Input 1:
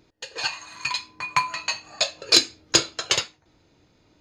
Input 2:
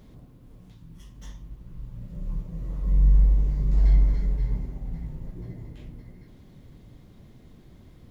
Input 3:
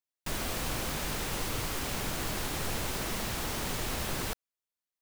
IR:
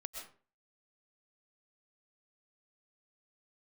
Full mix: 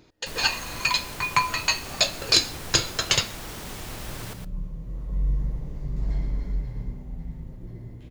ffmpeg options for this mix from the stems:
-filter_complex "[0:a]asubboost=boost=5.5:cutoff=150,alimiter=limit=-10.5dB:level=0:latency=1:release=157,volume=3dB,asplit=2[link_01][link_02];[link_02]volume=-16.5dB[link_03];[1:a]adelay=2250,volume=-3.5dB,asplit=2[link_04][link_05];[link_05]volume=-3.5dB[link_06];[2:a]volume=-5dB,asplit=3[link_07][link_08][link_09];[link_08]volume=-16dB[link_10];[link_09]volume=-6dB[link_11];[3:a]atrim=start_sample=2205[link_12];[link_03][link_10]amix=inputs=2:normalize=0[link_13];[link_13][link_12]afir=irnorm=-1:irlink=0[link_14];[link_06][link_11]amix=inputs=2:normalize=0,aecho=0:1:114:1[link_15];[link_01][link_04][link_07][link_14][link_15]amix=inputs=5:normalize=0"

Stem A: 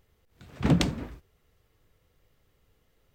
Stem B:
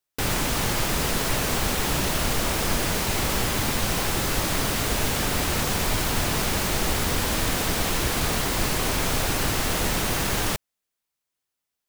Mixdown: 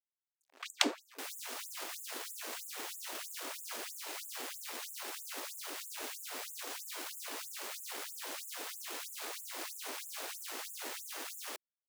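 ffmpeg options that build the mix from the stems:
ffmpeg -i stem1.wav -i stem2.wav -filter_complex "[0:a]dynaudnorm=framelen=110:gausssize=13:maxgain=10dB,volume=-3dB[link_01];[1:a]adelay=1000,volume=-13dB[link_02];[link_01][link_02]amix=inputs=2:normalize=0,aeval=exprs='sgn(val(0))*max(abs(val(0))-0.00531,0)':channel_layout=same,afftfilt=real='re*gte(b*sr/1024,230*pow(6900/230,0.5+0.5*sin(2*PI*3.1*pts/sr)))':imag='im*gte(b*sr/1024,230*pow(6900/230,0.5+0.5*sin(2*PI*3.1*pts/sr)))':win_size=1024:overlap=0.75" out.wav

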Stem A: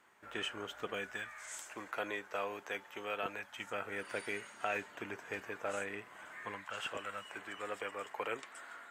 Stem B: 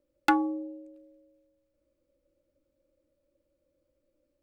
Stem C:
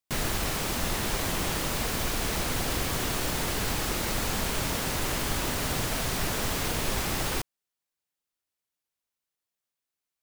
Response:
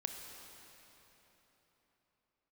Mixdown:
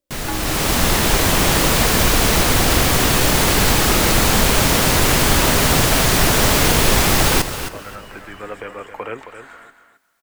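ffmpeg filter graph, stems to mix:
-filter_complex "[0:a]acrossover=split=2800[link_01][link_02];[link_02]acompressor=threshold=-57dB:ratio=4:attack=1:release=60[link_03];[link_01][link_03]amix=inputs=2:normalize=0,lowshelf=frequency=250:gain=12,acontrast=34,adelay=800,volume=-11.5dB,asplit=2[link_04][link_05];[link_05]volume=-10dB[link_06];[1:a]volume=-8.5dB[link_07];[2:a]volume=0.5dB,asplit=3[link_08][link_09][link_10];[link_09]volume=-11dB[link_11];[link_10]volume=-9.5dB[link_12];[3:a]atrim=start_sample=2205[link_13];[link_11][link_13]afir=irnorm=-1:irlink=0[link_14];[link_06][link_12]amix=inputs=2:normalize=0,aecho=0:1:268|536|804:1|0.16|0.0256[link_15];[link_04][link_07][link_08][link_14][link_15]amix=inputs=5:normalize=0,dynaudnorm=framelen=150:gausssize=7:maxgain=14.5dB"

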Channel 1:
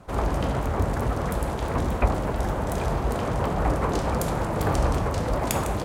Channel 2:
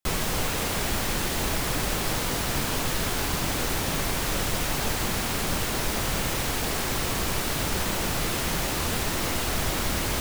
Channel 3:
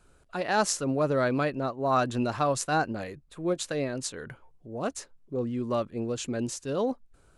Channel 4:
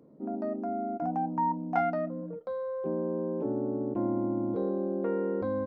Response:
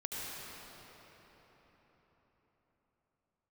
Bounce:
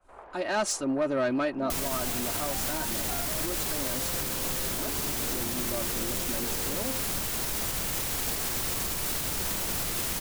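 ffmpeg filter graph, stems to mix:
-filter_complex "[0:a]acrossover=split=450 2800:gain=0.0708 1 0.0708[link_01][link_02][link_03];[link_01][link_02][link_03]amix=inputs=3:normalize=0,volume=-17dB[link_04];[1:a]highshelf=frequency=5700:gain=11,adelay=1650,volume=-1.5dB[link_05];[2:a]agate=range=-33dB:threshold=-55dB:ratio=3:detection=peak,aecho=1:1:3.2:0.78,asoftclip=type=tanh:threshold=-19dB,volume=-1.5dB[link_06];[3:a]adelay=1350,volume=-5dB[link_07];[link_04][link_05][link_06][link_07]amix=inputs=4:normalize=0,alimiter=limit=-20.5dB:level=0:latency=1:release=177"

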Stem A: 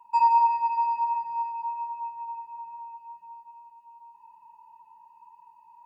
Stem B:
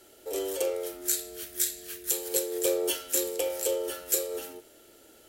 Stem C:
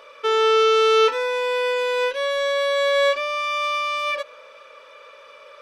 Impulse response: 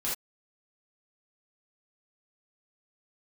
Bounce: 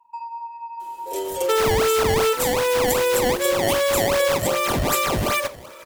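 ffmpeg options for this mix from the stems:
-filter_complex "[0:a]acompressor=threshold=-27dB:ratio=12,volume=-7.5dB,asplit=2[link_01][link_02];[link_02]volume=-10.5dB[link_03];[1:a]aecho=1:1:5.6:0.82,adelay=800,volume=0.5dB[link_04];[2:a]acrusher=samples=20:mix=1:aa=0.000001:lfo=1:lforange=32:lforate=2.6,adelay=1250,volume=2.5dB,asplit=2[link_05][link_06];[link_06]volume=-19dB[link_07];[3:a]atrim=start_sample=2205[link_08];[link_03][link_07]amix=inputs=2:normalize=0[link_09];[link_09][link_08]afir=irnorm=-1:irlink=0[link_10];[link_01][link_04][link_05][link_10]amix=inputs=4:normalize=0,acompressor=threshold=-16dB:ratio=6"

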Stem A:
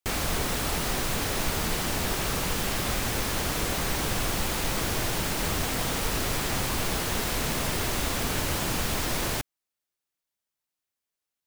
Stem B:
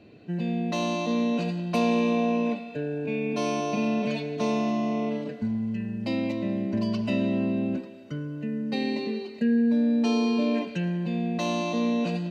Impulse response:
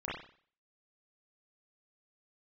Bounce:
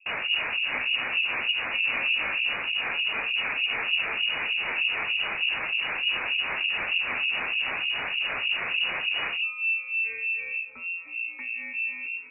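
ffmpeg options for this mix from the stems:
-filter_complex "[0:a]volume=2.5dB[link_01];[1:a]volume=-6.5dB[link_02];[link_01][link_02]amix=inputs=2:normalize=0,equalizer=frequency=350:width=0.8:gain=7,acrossover=split=440[link_03][link_04];[link_03]aeval=exprs='val(0)*(1-1/2+1/2*cos(2*PI*3.3*n/s))':channel_layout=same[link_05];[link_04]aeval=exprs='val(0)*(1-1/2-1/2*cos(2*PI*3.3*n/s))':channel_layout=same[link_06];[link_05][link_06]amix=inputs=2:normalize=0,lowpass=frequency=2500:width_type=q:width=0.5098,lowpass=frequency=2500:width_type=q:width=0.6013,lowpass=frequency=2500:width_type=q:width=0.9,lowpass=frequency=2500:width_type=q:width=2.563,afreqshift=-2900"

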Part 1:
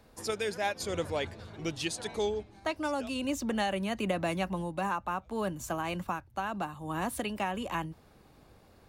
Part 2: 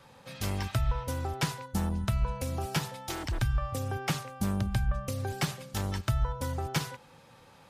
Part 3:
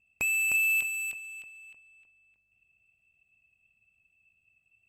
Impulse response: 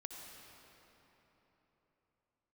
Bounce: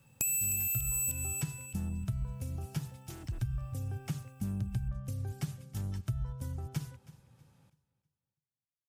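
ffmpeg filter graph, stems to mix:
-filter_complex "[1:a]volume=-8dB,asplit=2[link_01][link_02];[link_02]volume=-19.5dB[link_03];[2:a]acompressor=threshold=-37dB:ratio=3,aexciter=amount=5.9:drive=4.3:freq=3400,volume=2dB[link_04];[link_03]aecho=0:1:322|644|966|1288|1610:1|0.32|0.102|0.0328|0.0105[link_05];[link_01][link_04][link_05]amix=inputs=3:normalize=0,equalizer=frequency=125:width_type=o:width=1:gain=9,equalizer=frequency=500:width_type=o:width=1:gain=-6,equalizer=frequency=1000:width_type=o:width=1:gain=-8,equalizer=frequency=2000:width_type=o:width=1:gain=-6,equalizer=frequency=4000:width_type=o:width=1:gain=-7,acompressor=threshold=-29dB:ratio=6"

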